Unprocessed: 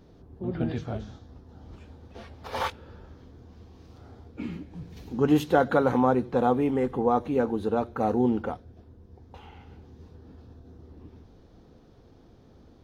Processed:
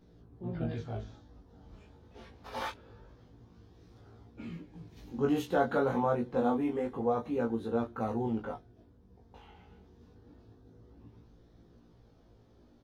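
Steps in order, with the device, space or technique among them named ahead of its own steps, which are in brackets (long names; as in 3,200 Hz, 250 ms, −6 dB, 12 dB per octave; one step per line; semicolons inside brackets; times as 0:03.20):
double-tracked vocal (double-tracking delay 17 ms −4 dB; chorus effect 0.26 Hz, delay 17.5 ms, depth 4.2 ms)
level −5 dB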